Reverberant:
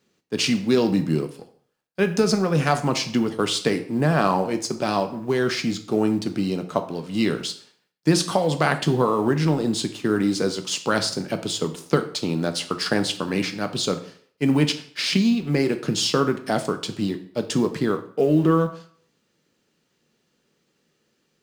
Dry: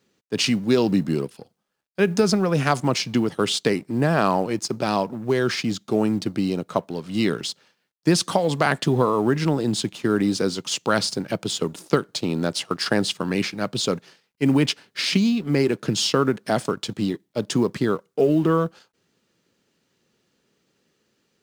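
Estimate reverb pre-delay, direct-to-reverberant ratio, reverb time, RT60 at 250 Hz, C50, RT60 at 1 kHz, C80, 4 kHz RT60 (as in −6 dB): 3 ms, 7.0 dB, 0.55 s, 0.50 s, 12.5 dB, 0.50 s, 16.0 dB, 0.50 s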